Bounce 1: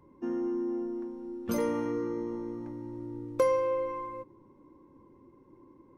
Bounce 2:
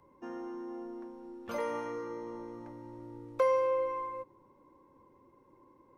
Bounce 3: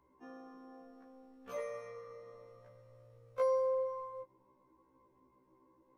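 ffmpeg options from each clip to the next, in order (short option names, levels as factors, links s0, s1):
-filter_complex "[0:a]acrossover=split=530|6600[s0][s1][s2];[s0]alimiter=level_in=2.11:limit=0.0631:level=0:latency=1,volume=0.473[s3];[s3][s1][s2]amix=inputs=3:normalize=0,acrossover=split=3800[s4][s5];[s5]acompressor=threshold=0.00126:ratio=4:attack=1:release=60[s6];[s4][s6]amix=inputs=2:normalize=0,lowshelf=f=440:t=q:w=1.5:g=-6.5"
-af "afftfilt=real='re*1.73*eq(mod(b,3),0)':imag='im*1.73*eq(mod(b,3),0)':win_size=2048:overlap=0.75,volume=0.596"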